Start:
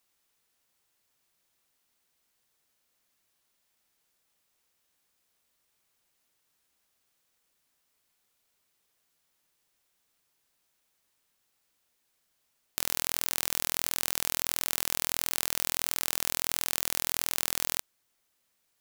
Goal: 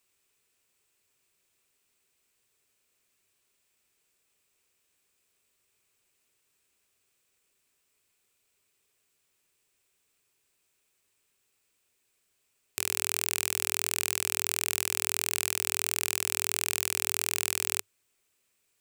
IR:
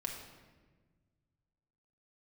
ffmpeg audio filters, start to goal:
-af "equalizer=frequency=100:width_type=o:width=0.33:gain=7,equalizer=frequency=400:width_type=o:width=0.33:gain=8,equalizer=frequency=800:width_type=o:width=0.33:gain=-4,equalizer=frequency=2500:width_type=o:width=0.33:gain=7,equalizer=frequency=8000:width_type=o:width=0.33:gain=7,volume=-1dB"

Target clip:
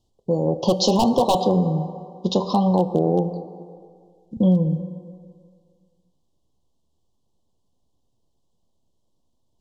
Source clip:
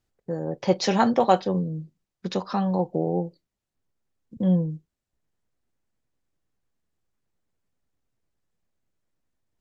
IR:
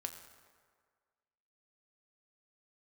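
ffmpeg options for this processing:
-filter_complex "[0:a]aemphasis=mode=reproduction:type=50fm,asplit=2[link_01][link_02];[1:a]atrim=start_sample=2205,asetrate=38367,aresample=44100[link_03];[link_02][link_03]afir=irnorm=-1:irlink=0,volume=1dB[link_04];[link_01][link_04]amix=inputs=2:normalize=0,aeval=exprs='0.398*(abs(mod(val(0)/0.398+3,4)-2)-1)':channel_layout=same,asuperstop=centerf=1800:order=12:qfactor=0.96,highshelf=frequency=3500:gain=7,bandreject=frequency=387.9:width_type=h:width=4,bandreject=frequency=775.8:width_type=h:width=4,bandreject=frequency=1163.7:width_type=h:width=4,bandreject=frequency=1551.6:width_type=h:width=4,bandreject=frequency=1939.5:width_type=h:width=4,bandreject=frequency=2327.4:width_type=h:width=4,bandreject=frequency=2715.3:width_type=h:width=4,bandreject=frequency=3103.2:width_type=h:width=4,bandreject=frequency=3491.1:width_type=h:width=4,bandreject=frequency=3879:width_type=h:width=4,bandreject=frequency=4266.9:width_type=h:width=4,bandreject=frequency=4654.8:width_type=h:width=4,bandreject=frequency=5042.7:width_type=h:width=4,bandreject=frequency=5430.6:width_type=h:width=4,bandreject=frequency=5818.5:width_type=h:width=4,bandreject=frequency=6206.4:width_type=h:width=4,bandreject=frequency=6594.3:width_type=h:width=4,bandreject=frequency=6982.2:width_type=h:width=4,bandreject=frequency=7370.1:width_type=h:width=4,bandreject=frequency=7758:width_type=h:width=4,bandreject=frequency=8145.9:width_type=h:width=4,bandreject=frequency=8533.8:width_type=h:width=4,bandreject=frequency=8921.7:width_type=h:width=4,bandreject=frequency=9309.6:width_type=h:width=4,bandreject=frequency=9697.5:width_type=h:width=4,bandreject=frequency=10085.4:width_type=h:width=4,bandreject=frequency=10473.3:width_type=h:width=4,bandreject=frequency=10861.2:width_type=h:width=4,bandreject=frequency=11249.1:width_type=h:width=4,bandreject=frequency=11637:width_type=h:width=4,bandreject=frequency=12024.9:width_type=h:width=4,bandreject=frequency=12412.8:width_type=h:width=4,acompressor=threshold=-17dB:ratio=6,volume=3dB"

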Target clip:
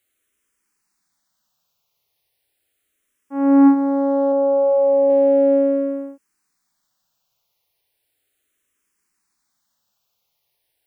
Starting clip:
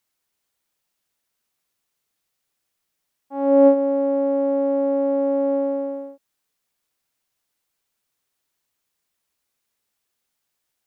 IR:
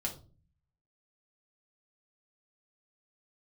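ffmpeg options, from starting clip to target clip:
-filter_complex "[0:a]asettb=1/sr,asplit=3[link_01][link_02][link_03];[link_01]atrim=end=4.324[link_04];[link_02]atrim=start=4.32:end=5.1,asetpts=PTS-STARTPTS,afade=type=in:duration=0.004:curve=qsin,afade=type=out:start_time=0.776:duration=0.004:curve=qsin,lowpass=frequency=1500:poles=1[link_05];[link_03]atrim=start=5.096[link_06];[link_04][link_05]acrossfade=duration=0.004:curve1=hsin:curve2=qsin[link_07];[link_07][link_06]acrossfade=duration=0.004:curve1=qsin:curve2=hsin,asplit=2[link_08][link_09];[link_09]afreqshift=-0.36[link_10];[link_08][link_10]amix=inputs=2:normalize=1,volume=7.5dB"

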